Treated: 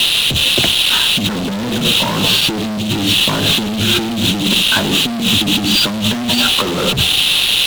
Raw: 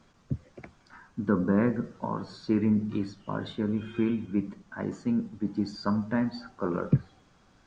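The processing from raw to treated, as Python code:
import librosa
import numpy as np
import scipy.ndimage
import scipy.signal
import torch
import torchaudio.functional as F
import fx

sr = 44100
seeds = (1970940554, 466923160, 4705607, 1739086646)

y = fx.dmg_noise_band(x, sr, seeds[0], low_hz=2600.0, high_hz=4000.0, level_db=-41.0)
y = fx.fuzz(y, sr, gain_db=40.0, gate_db=-45.0)
y = fx.over_compress(y, sr, threshold_db=-18.0, ratio=-0.5)
y = y * 10.0 ** (4.0 / 20.0)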